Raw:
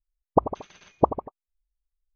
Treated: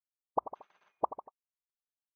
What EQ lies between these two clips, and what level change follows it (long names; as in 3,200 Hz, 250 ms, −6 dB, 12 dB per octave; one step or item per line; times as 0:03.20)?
resonant band-pass 950 Hz, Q 1.5
−8.5 dB